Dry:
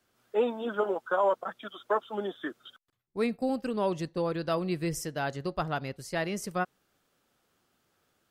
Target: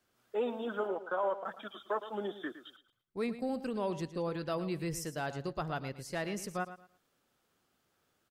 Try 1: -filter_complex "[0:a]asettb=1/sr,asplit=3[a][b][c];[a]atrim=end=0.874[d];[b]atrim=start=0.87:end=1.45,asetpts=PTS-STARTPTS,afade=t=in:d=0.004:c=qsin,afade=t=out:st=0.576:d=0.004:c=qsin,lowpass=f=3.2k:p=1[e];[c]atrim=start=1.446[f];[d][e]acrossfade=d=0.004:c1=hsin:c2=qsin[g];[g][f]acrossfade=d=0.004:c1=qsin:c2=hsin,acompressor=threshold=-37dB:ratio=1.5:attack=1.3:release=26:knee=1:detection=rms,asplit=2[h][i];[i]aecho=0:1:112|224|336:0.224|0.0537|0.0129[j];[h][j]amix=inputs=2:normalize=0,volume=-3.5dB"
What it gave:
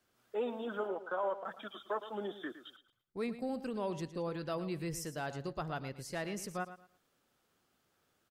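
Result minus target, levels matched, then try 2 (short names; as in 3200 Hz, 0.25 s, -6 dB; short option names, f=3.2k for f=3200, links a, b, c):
compressor: peak gain reduction +2.5 dB
-filter_complex "[0:a]asettb=1/sr,asplit=3[a][b][c];[a]atrim=end=0.874[d];[b]atrim=start=0.87:end=1.45,asetpts=PTS-STARTPTS,afade=t=in:d=0.004:c=qsin,afade=t=out:st=0.576:d=0.004:c=qsin,lowpass=f=3.2k:p=1[e];[c]atrim=start=1.446[f];[d][e]acrossfade=d=0.004:c1=hsin:c2=qsin[g];[g][f]acrossfade=d=0.004:c1=qsin:c2=hsin,acompressor=threshold=-29.5dB:ratio=1.5:attack=1.3:release=26:knee=1:detection=rms,asplit=2[h][i];[i]aecho=0:1:112|224|336:0.224|0.0537|0.0129[j];[h][j]amix=inputs=2:normalize=0,volume=-3.5dB"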